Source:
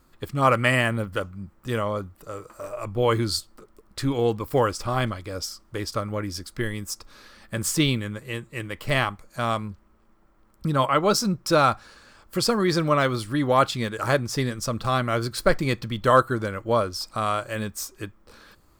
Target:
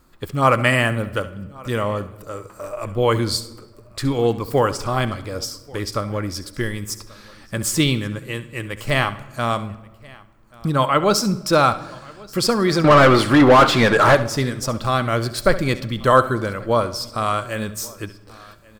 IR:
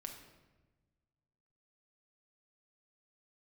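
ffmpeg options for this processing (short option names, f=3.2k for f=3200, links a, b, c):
-filter_complex "[0:a]aecho=1:1:1134:0.0631,asettb=1/sr,asplit=3[a][b][c];[a]atrim=end=12.844[d];[b]atrim=start=12.84:end=14.15,asetpts=PTS-STARTPTS,afade=t=in:d=0.004:c=qsin,afade=t=out:st=1.306:d=0.004:c=qsin,asplit=2[e][f];[f]highpass=f=720:p=1,volume=28dB,asoftclip=type=tanh:threshold=-6dB[g];[e][g]amix=inputs=2:normalize=0,lowpass=f=1.4k:p=1,volume=-6dB[h];[c]atrim=start=14.146[i];[d][h]acrossfade=d=0.004:c1=hsin:c2=qsin[j];[j][i]acrossfade=d=0.004:c1=qsin:c2=hsin,asplit=2[k][l];[1:a]atrim=start_sample=2205,adelay=68[m];[l][m]afir=irnorm=-1:irlink=0,volume=-10dB[n];[k][n]amix=inputs=2:normalize=0,volume=3.5dB"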